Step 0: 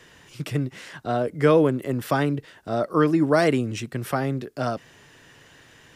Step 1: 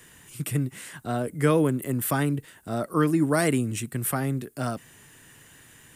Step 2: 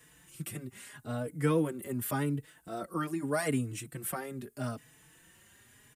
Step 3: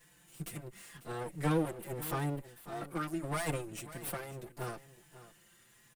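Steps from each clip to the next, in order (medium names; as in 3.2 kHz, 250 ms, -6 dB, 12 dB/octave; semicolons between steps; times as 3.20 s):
FFT filter 230 Hz 0 dB, 560 Hz -7 dB, 890 Hz -4 dB, 2 kHz -2 dB, 5.5 kHz -4 dB, 8.7 kHz +13 dB
endless flanger 4.2 ms +0.82 Hz; trim -5 dB
comb filter that takes the minimum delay 5.8 ms; delay 545 ms -15.5 dB; trim -2 dB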